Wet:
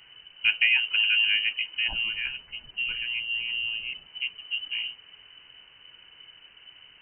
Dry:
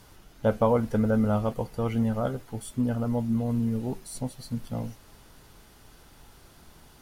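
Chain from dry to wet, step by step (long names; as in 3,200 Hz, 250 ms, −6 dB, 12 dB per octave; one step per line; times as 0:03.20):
voice inversion scrambler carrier 3,000 Hz
0:01.88–0:04.07: spectral tilt −3 dB per octave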